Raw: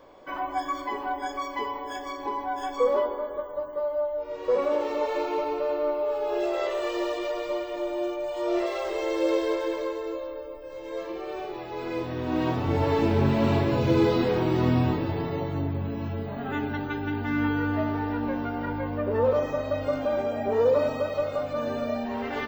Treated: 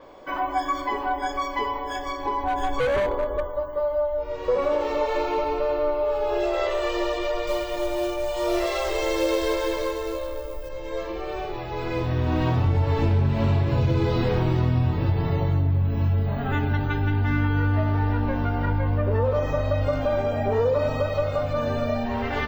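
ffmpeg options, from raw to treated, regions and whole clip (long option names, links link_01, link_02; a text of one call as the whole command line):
ffmpeg -i in.wav -filter_complex "[0:a]asettb=1/sr,asplit=3[link_01][link_02][link_03];[link_01]atrim=end=2.434[link_04];[link_02]atrim=start=2.43:end=3.5,asetpts=PTS-STARTPTS,afade=type=in:duration=0.004:curve=qsin,afade=type=out:start_time=1.066:duration=0.004:curve=qsin,lowshelf=frequency=430:gain=6.5,asoftclip=type=hard:threshold=-23.5dB,bandreject=frequency=5200:width=6.7[link_05];[link_03]atrim=start=3.496[link_06];[link_04][link_05]acrossfade=duration=0.004:curve1=hsin:curve2=qsin[link_07];[link_07][link_06]acrossfade=duration=0.004:curve1=qsin:curve2=hsin,asettb=1/sr,asplit=3[link_08][link_09][link_10];[link_08]atrim=end=7.474[link_11];[link_09]atrim=start=7.47:end=10.69,asetpts=PTS-STARTPTS,afade=type=in:duration=0.004:curve=qsin,afade=type=out:start_time=3.216:duration=0.004:curve=qsin,highshelf=frequency=5100:gain=11,acrusher=bits=5:mode=log:mix=0:aa=0.000001[link_12];[link_10]atrim=start=10.686[link_13];[link_11][link_12]acrossfade=duration=0.004:curve1=hsin:curve2=qsin[link_14];[link_14][link_13]acrossfade=duration=0.004:curve1=qsin:curve2=hsin,asubboost=boost=5.5:cutoff=110,acompressor=threshold=-23dB:ratio=6,adynamicequalizer=threshold=0.002:dfrequency=6900:dqfactor=0.7:tfrequency=6900:tqfactor=0.7:attack=5:release=100:ratio=0.375:range=2:mode=cutabove:tftype=highshelf,volume=5dB" out.wav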